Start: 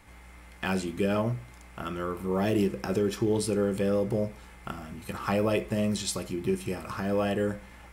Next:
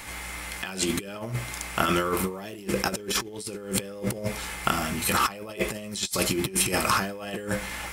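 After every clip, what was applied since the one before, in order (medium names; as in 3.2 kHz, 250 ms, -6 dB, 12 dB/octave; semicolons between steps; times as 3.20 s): treble shelf 2.1 kHz +10 dB; compressor with a negative ratio -33 dBFS, ratio -0.5; bass shelf 220 Hz -6 dB; trim +7 dB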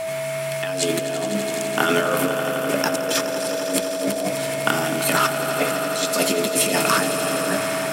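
echo with a slow build-up 84 ms, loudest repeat 5, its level -12.5 dB; frequency shift +81 Hz; whistle 650 Hz -28 dBFS; trim +3.5 dB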